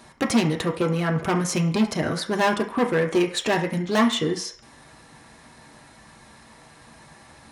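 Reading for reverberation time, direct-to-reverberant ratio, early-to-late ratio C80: 0.50 s, 1.0 dB, 14.5 dB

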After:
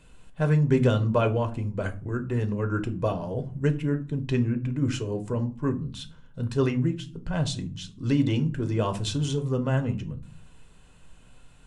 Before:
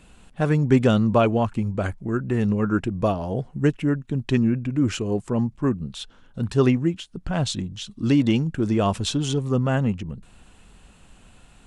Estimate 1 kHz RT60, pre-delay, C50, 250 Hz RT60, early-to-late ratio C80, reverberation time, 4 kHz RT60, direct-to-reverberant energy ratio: 0.35 s, 6 ms, 17.0 dB, 0.75 s, 22.0 dB, 0.40 s, 0.25 s, 7.0 dB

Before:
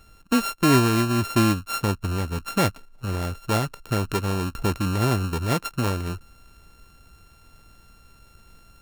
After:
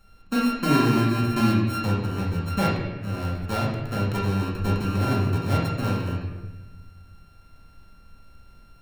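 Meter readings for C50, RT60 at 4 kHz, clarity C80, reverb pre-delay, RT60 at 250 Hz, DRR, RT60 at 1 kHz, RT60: 1.5 dB, 0.90 s, 3.5 dB, 4 ms, 1.4 s, −6.0 dB, 1.1 s, 1.1 s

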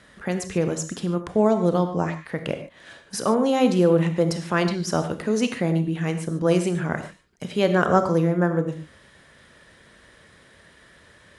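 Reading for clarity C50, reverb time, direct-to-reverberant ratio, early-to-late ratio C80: 9.5 dB, non-exponential decay, 7.5 dB, 11.5 dB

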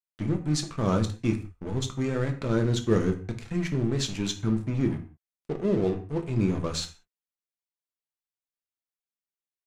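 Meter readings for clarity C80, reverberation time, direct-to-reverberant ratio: 15.5 dB, non-exponential decay, 4.5 dB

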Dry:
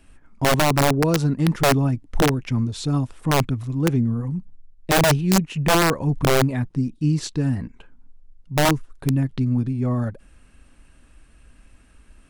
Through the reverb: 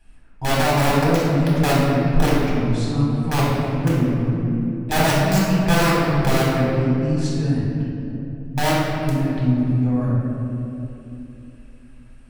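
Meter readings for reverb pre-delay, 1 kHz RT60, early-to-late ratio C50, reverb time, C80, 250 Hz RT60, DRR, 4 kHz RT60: 3 ms, 2.5 s, −2.5 dB, 2.9 s, 0.0 dB, 3.9 s, −7.0 dB, 1.7 s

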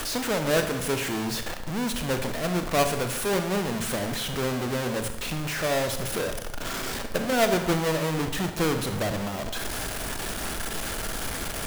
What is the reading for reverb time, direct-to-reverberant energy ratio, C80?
0.95 s, 6.5 dB, 10.5 dB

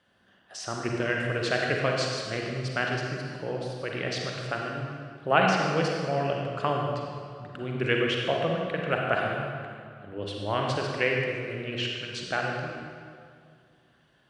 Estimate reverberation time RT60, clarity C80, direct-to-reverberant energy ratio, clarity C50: 2.2 s, 2.0 dB, −0.5 dB, 0.0 dB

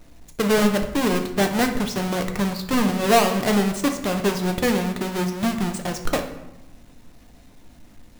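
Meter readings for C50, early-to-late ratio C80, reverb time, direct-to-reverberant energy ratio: 9.0 dB, 11.5 dB, 1.0 s, 4.0 dB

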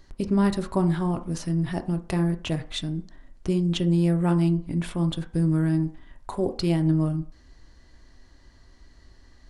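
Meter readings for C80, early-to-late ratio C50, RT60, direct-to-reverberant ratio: 19.0 dB, 14.5 dB, 0.45 s, 7.0 dB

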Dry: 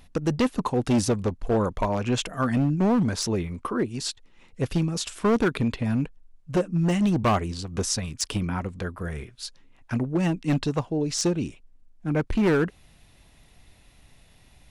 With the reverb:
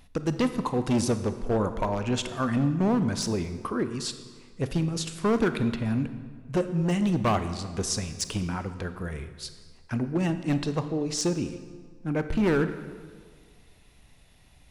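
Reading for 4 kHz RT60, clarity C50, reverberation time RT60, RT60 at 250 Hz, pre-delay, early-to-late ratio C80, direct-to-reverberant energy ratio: 1.2 s, 11.0 dB, 1.7 s, 1.8 s, 26 ms, 12.0 dB, 10.0 dB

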